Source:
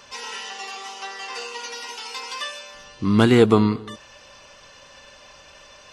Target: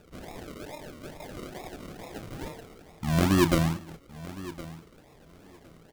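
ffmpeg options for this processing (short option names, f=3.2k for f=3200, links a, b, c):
-filter_complex "[0:a]asetrate=34006,aresample=44100,atempo=1.29684,acrusher=samples=41:mix=1:aa=0.000001:lfo=1:lforange=24.6:lforate=2.3,asplit=2[a][b];[b]adelay=31,volume=-14dB[c];[a][c]amix=inputs=2:normalize=0,aecho=1:1:1063|2126:0.141|0.0226,volume=-7.5dB"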